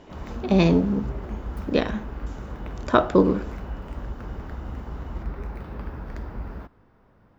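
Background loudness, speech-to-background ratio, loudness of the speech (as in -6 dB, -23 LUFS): -36.5 LUFS, 14.0 dB, -22.5 LUFS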